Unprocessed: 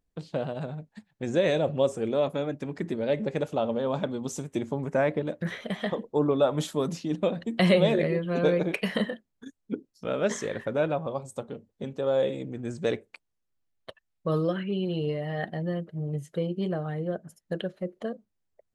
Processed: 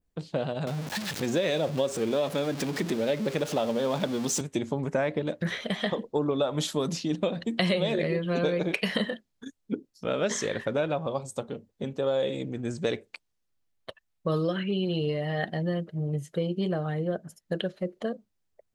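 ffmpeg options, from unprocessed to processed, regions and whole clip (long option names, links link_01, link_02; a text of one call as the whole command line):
ffmpeg -i in.wav -filter_complex "[0:a]asettb=1/sr,asplit=3[link_01][link_02][link_03];[link_01]atrim=end=0.674[link_04];[link_02]atrim=start=0.67:end=4.41,asetpts=PTS-STARTPTS,afade=type=in:duration=0.004:curve=qsin,afade=type=out:start_time=3.736:duration=0.004:curve=qsin,aeval=exprs='val(0)+0.5*0.0133*sgn(val(0))':channel_layout=same,highpass=120,acompressor=mode=upward:threshold=-28dB:ratio=2.5:attack=3.2:release=140:knee=2.83:detection=peak[link_05];[link_03]atrim=start=4.406[link_06];[link_04][link_05]acrossfade=duration=0.004:curve1=hsin:curve2=qsin[link_07];[link_07][link_06]acrossfade=duration=0.004:curve1=qsin:curve2=hsin,adynamicequalizer=threshold=0.00355:dfrequency=4500:dqfactor=0.76:tfrequency=4500:tqfactor=0.76:attack=5:release=100:ratio=0.375:range=3.5:mode=boostabove:tftype=bell,acompressor=threshold=-25dB:ratio=5,volume=2dB" out.wav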